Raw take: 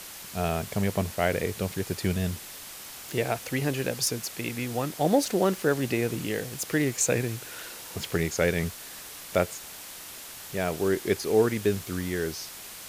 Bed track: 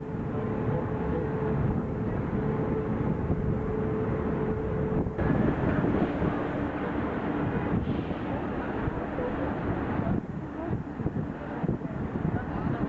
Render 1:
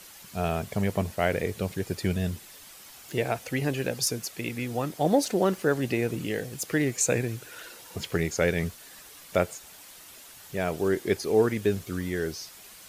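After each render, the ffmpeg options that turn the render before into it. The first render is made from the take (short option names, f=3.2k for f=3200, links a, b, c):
-af "afftdn=nr=8:nf=-43"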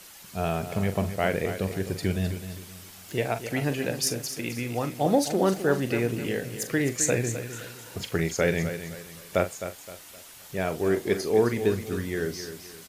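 -filter_complex "[0:a]asplit=2[a][b];[b]adelay=42,volume=-11dB[c];[a][c]amix=inputs=2:normalize=0,asplit=2[d][e];[e]aecho=0:1:260|520|780|1040:0.299|0.104|0.0366|0.0128[f];[d][f]amix=inputs=2:normalize=0"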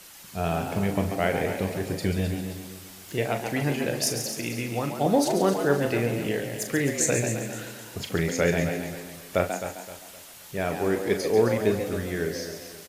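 -filter_complex "[0:a]asplit=2[a][b];[b]adelay=35,volume=-11dB[c];[a][c]amix=inputs=2:normalize=0,asplit=5[d][e][f][g][h];[e]adelay=138,afreqshift=96,volume=-8dB[i];[f]adelay=276,afreqshift=192,volume=-17.6dB[j];[g]adelay=414,afreqshift=288,volume=-27.3dB[k];[h]adelay=552,afreqshift=384,volume=-36.9dB[l];[d][i][j][k][l]amix=inputs=5:normalize=0"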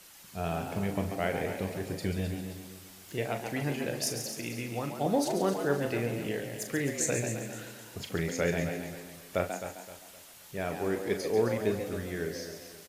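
-af "volume=-6dB"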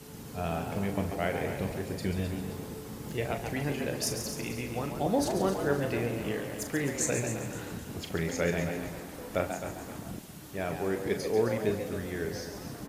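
-filter_complex "[1:a]volume=-13dB[a];[0:a][a]amix=inputs=2:normalize=0"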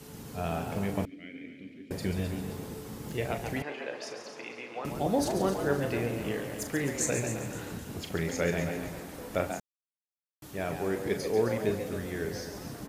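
-filter_complex "[0:a]asettb=1/sr,asplit=3[a][b][c];[a]atrim=end=1.054[d];[b]atrim=start=1.05:end=1.91,asetpts=PTS-STARTPTS,afade=t=in:d=0.004:c=qsin,afade=t=out:st=0.856:d=0.004:c=qsin,asplit=3[e][f][g];[e]bandpass=f=270:t=q:w=8,volume=0dB[h];[f]bandpass=f=2.29k:t=q:w=8,volume=-6dB[i];[g]bandpass=f=3.01k:t=q:w=8,volume=-9dB[j];[h][i][j]amix=inputs=3:normalize=0[k];[c]atrim=start=1.906[l];[d][k]acrossfade=d=0.004:c1=hsin:c2=qsin[m];[m][l]acrossfade=d=0.004:c1=qsin:c2=hsin,asettb=1/sr,asplit=3[n][o][p];[n]atrim=end=3.624[q];[o]atrim=start=3.62:end=4.85,asetpts=PTS-STARTPTS,afade=t=in:d=0.004:c=qsin,afade=t=out:st=1.226:d=0.004:c=qsin,highpass=510,lowpass=3.2k[r];[p]atrim=start=4.846[s];[q][r]acrossfade=d=0.004:c1=hsin:c2=qsin[t];[t][s]acrossfade=d=0.004:c1=qsin:c2=hsin,asplit=3[u][v][w];[u]atrim=end=9.6,asetpts=PTS-STARTPTS,afade=t=out:st=9.596:d=0.004:c=hsin[x];[v]atrim=start=9.6:end=10.42,asetpts=PTS-STARTPTS,volume=0[y];[w]atrim=start=10.42,asetpts=PTS-STARTPTS,afade=t=in:d=0.004:c=hsin[z];[x][y][z]concat=n=3:v=0:a=1"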